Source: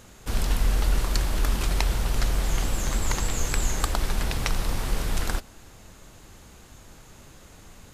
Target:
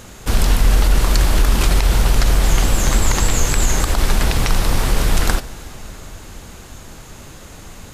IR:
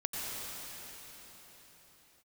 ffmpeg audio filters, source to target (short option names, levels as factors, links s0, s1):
-filter_complex "[0:a]asplit=2[s0][s1];[1:a]atrim=start_sample=2205,adelay=144[s2];[s1][s2]afir=irnorm=-1:irlink=0,volume=0.075[s3];[s0][s3]amix=inputs=2:normalize=0,alimiter=level_in=5.31:limit=0.891:release=50:level=0:latency=1,volume=0.668"